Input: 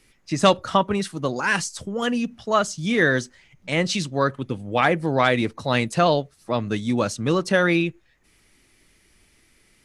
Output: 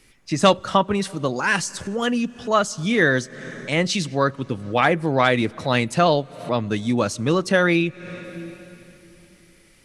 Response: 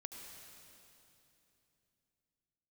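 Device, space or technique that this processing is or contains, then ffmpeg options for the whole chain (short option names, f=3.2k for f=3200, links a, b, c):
ducked reverb: -filter_complex "[0:a]asplit=3[a][b][c];[1:a]atrim=start_sample=2205[d];[b][d]afir=irnorm=-1:irlink=0[e];[c]apad=whole_len=434142[f];[e][f]sidechaincompress=threshold=-36dB:ratio=16:attack=6.7:release=204,volume=-3dB[g];[a][g]amix=inputs=2:normalize=0,volume=1dB"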